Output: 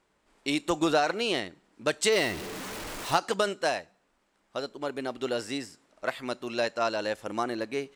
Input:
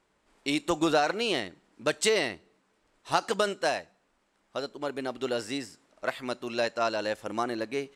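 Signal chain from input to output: 2.12–3.17 zero-crossing step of -32 dBFS

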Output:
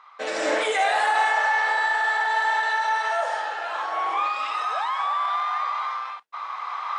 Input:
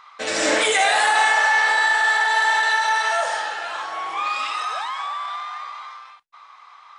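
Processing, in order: recorder AGC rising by 7.8 dB/s; HPF 510 Hz 12 dB/oct; tilt -3.5 dB/oct; gain -2.5 dB

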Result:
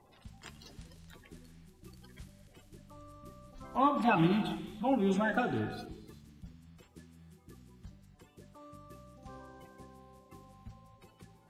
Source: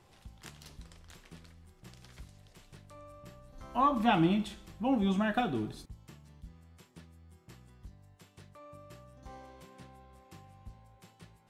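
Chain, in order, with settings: bin magnitudes rounded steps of 30 dB; non-linear reverb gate 0.44 s flat, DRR 11 dB

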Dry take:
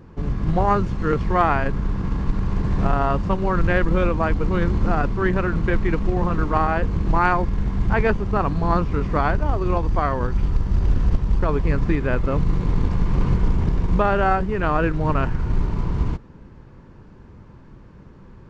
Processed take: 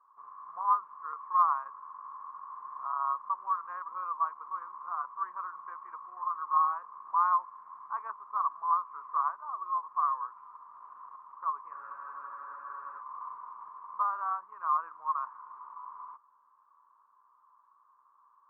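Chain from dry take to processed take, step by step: Butterworth band-pass 1100 Hz, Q 5.3; spectral freeze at 11.75, 1.23 s

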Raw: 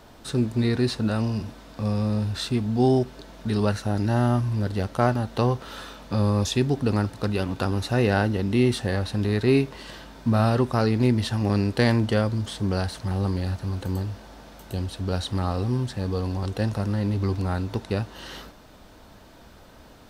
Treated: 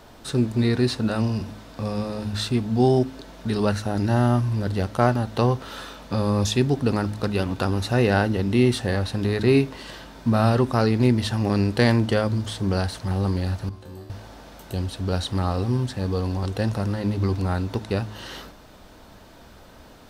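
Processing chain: 13.69–14.1 resonator 75 Hz, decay 0.78 s, harmonics all, mix 90%; de-hum 52.66 Hz, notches 6; gain +2 dB

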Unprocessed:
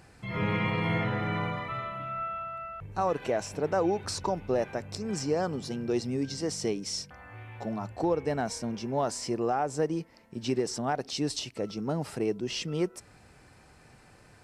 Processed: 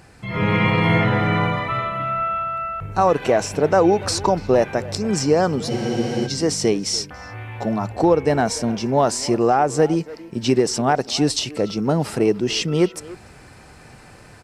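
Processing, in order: AGC gain up to 4.5 dB; speakerphone echo 0.29 s, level -16 dB; spectral freeze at 5.71, 0.55 s; gain +7 dB

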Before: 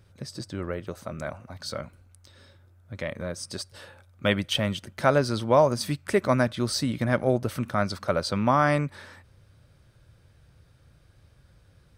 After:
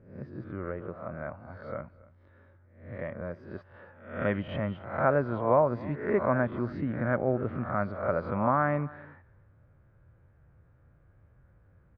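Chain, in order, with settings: spectral swells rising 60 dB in 0.56 s; LPF 1800 Hz 24 dB/oct; echo 0.279 s -22 dB; gain -5 dB

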